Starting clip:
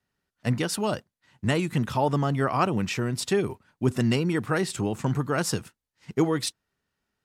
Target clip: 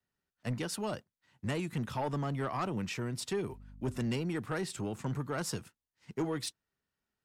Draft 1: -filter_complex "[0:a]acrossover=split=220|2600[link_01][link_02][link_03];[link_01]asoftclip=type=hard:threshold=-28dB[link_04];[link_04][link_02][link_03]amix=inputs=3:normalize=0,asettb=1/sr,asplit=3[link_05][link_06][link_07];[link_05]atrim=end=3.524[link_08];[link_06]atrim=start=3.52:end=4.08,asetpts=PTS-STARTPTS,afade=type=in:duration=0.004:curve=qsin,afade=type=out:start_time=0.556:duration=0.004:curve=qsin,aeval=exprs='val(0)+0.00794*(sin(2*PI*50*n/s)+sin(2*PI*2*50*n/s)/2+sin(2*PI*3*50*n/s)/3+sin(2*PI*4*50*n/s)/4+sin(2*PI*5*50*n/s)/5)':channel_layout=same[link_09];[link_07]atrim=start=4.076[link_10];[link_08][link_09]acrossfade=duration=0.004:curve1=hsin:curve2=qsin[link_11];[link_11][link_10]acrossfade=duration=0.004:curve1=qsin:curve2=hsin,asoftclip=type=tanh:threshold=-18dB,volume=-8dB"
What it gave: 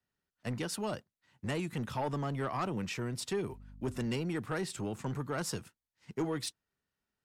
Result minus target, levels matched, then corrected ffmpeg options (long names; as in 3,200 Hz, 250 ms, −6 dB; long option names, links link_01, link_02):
hard clipping: distortion +14 dB
-filter_complex "[0:a]acrossover=split=220|2600[link_01][link_02][link_03];[link_01]asoftclip=type=hard:threshold=-21.5dB[link_04];[link_04][link_02][link_03]amix=inputs=3:normalize=0,asettb=1/sr,asplit=3[link_05][link_06][link_07];[link_05]atrim=end=3.524[link_08];[link_06]atrim=start=3.52:end=4.08,asetpts=PTS-STARTPTS,afade=type=in:duration=0.004:curve=qsin,afade=type=out:start_time=0.556:duration=0.004:curve=qsin,aeval=exprs='val(0)+0.00794*(sin(2*PI*50*n/s)+sin(2*PI*2*50*n/s)/2+sin(2*PI*3*50*n/s)/3+sin(2*PI*4*50*n/s)/4+sin(2*PI*5*50*n/s)/5)':channel_layout=same[link_09];[link_07]atrim=start=4.076[link_10];[link_08][link_09]acrossfade=duration=0.004:curve1=hsin:curve2=qsin[link_11];[link_11][link_10]acrossfade=duration=0.004:curve1=qsin:curve2=hsin,asoftclip=type=tanh:threshold=-18dB,volume=-8dB"